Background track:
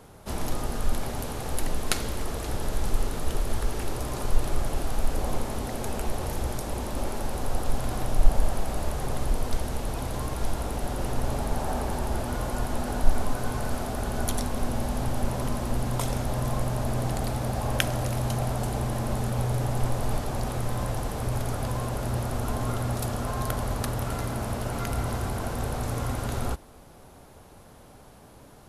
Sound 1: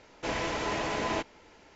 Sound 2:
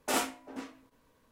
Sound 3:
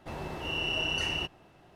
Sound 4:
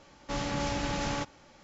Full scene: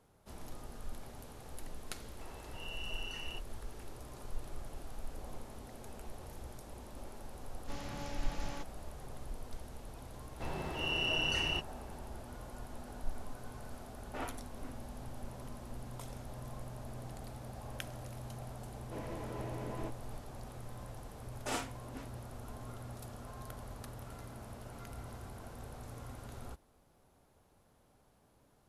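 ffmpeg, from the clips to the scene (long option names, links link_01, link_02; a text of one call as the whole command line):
ffmpeg -i bed.wav -i cue0.wav -i cue1.wav -i cue2.wav -i cue3.wav -filter_complex "[3:a]asplit=2[link_01][link_02];[2:a]asplit=2[link_03][link_04];[0:a]volume=-18dB[link_05];[link_01]highpass=490[link_06];[link_03]lowpass=2200[link_07];[1:a]tiltshelf=frequency=1100:gain=9[link_08];[link_04]lowpass=9800[link_09];[link_06]atrim=end=1.75,asetpts=PTS-STARTPTS,volume=-13.5dB,afade=type=in:duration=0.004:curve=hsin,afade=type=out:start_time=1.746:duration=0.004:curve=hsin,adelay=2130[link_10];[4:a]atrim=end=1.63,asetpts=PTS-STARTPTS,volume=-13dB,afade=type=in:duration=0.004:curve=hsin,afade=type=out:start_time=1.626:duration=0.004:curve=hsin,adelay=7390[link_11];[link_02]atrim=end=1.75,asetpts=PTS-STARTPTS,volume=-2.5dB,afade=type=in:duration=0.004:curve=hsin,afade=type=out:start_time=1.746:duration=0.004:curve=hsin,adelay=455994S[link_12];[link_07]atrim=end=1.31,asetpts=PTS-STARTPTS,volume=-10.5dB,afade=type=in:duration=0.004:curve=hsin,afade=type=out:start_time=1.306:duration=0.004:curve=hsin,adelay=14060[link_13];[link_08]atrim=end=1.75,asetpts=PTS-STARTPTS,volume=-16.5dB,afade=type=in:duration=0.004:curve=hsin,afade=type=out:start_time=1.746:duration=0.004:curve=hsin,adelay=18680[link_14];[link_09]atrim=end=1.31,asetpts=PTS-STARTPTS,volume=-7.5dB,afade=type=in:duration=0.004:curve=hsin,afade=type=out:start_time=1.306:duration=0.004:curve=hsin,adelay=21380[link_15];[link_05][link_10][link_11][link_12][link_13][link_14][link_15]amix=inputs=7:normalize=0" out.wav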